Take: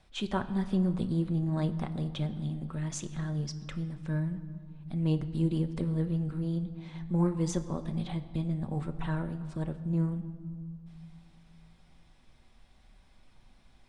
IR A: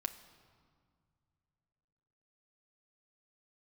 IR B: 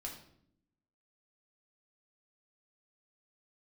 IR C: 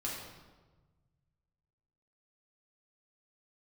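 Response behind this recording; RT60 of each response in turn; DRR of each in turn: A; 2.1, 0.70, 1.3 s; 7.0, -1.5, -5.5 dB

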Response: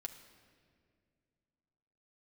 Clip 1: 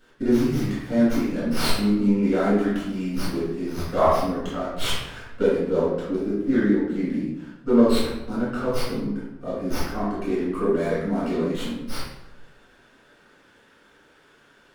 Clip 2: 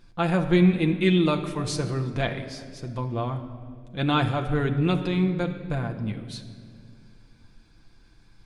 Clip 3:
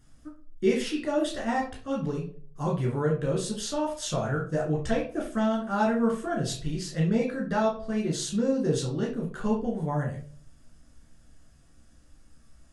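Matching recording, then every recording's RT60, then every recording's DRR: 2; 0.90, 2.1, 0.45 s; -10.5, 3.5, -3.5 dB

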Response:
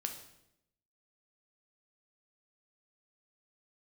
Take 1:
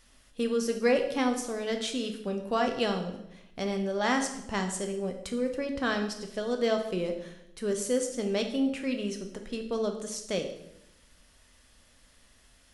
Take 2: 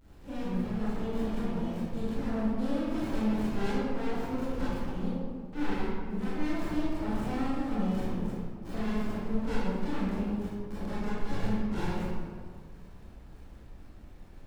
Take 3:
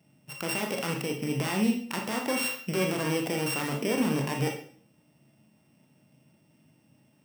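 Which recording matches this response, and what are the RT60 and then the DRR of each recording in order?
1; 0.80, 1.8, 0.50 s; 4.0, -11.5, 1.5 dB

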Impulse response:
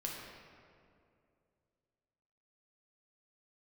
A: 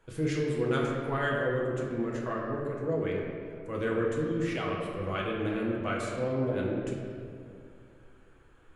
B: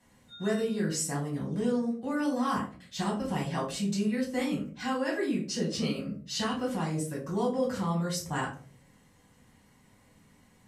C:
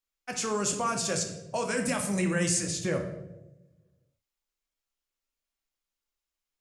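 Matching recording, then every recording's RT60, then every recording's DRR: A; 2.5, 0.45, 1.0 s; -3.0, -5.5, 3.0 dB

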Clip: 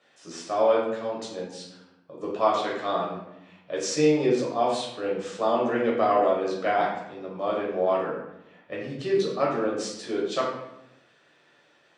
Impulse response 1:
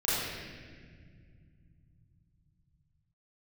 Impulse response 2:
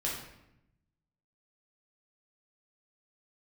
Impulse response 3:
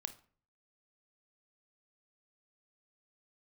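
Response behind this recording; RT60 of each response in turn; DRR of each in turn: 2; 1.9, 0.85, 0.45 s; -11.0, -4.5, 10.5 dB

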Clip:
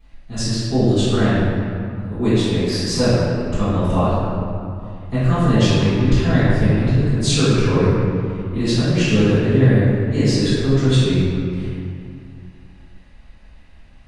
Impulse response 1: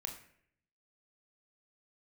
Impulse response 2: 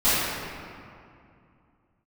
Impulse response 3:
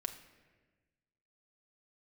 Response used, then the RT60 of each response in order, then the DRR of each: 2; 0.65, 2.4, 1.4 s; 3.0, -17.0, 4.5 dB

